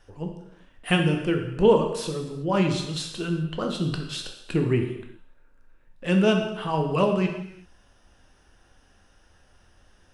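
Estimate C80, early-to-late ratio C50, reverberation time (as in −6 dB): 8.5 dB, 6.0 dB, non-exponential decay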